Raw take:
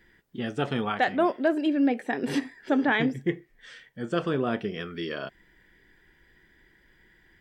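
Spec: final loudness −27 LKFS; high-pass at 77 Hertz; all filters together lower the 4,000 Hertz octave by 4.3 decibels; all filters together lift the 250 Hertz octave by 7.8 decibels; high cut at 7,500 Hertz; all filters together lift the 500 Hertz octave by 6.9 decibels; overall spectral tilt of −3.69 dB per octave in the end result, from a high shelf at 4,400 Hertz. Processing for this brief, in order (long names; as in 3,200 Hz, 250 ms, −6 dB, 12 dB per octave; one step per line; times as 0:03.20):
high-pass filter 77 Hz
low-pass filter 7,500 Hz
parametric band 250 Hz +7 dB
parametric band 500 Hz +7 dB
parametric band 4,000 Hz −8.5 dB
high-shelf EQ 4,400 Hz +5 dB
level −6 dB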